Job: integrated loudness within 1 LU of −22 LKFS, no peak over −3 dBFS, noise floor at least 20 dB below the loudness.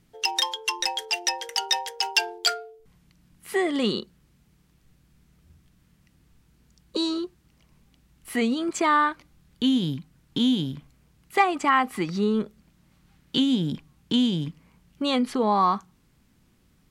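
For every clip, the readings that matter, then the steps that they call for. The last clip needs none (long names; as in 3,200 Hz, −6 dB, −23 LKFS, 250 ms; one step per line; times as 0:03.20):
integrated loudness −25.0 LKFS; sample peak −7.0 dBFS; target loudness −22.0 LKFS
→ level +3 dB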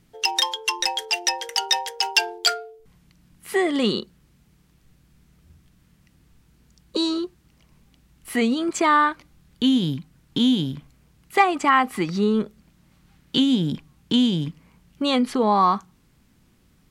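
integrated loudness −22.0 LKFS; sample peak −4.0 dBFS; background noise floor −60 dBFS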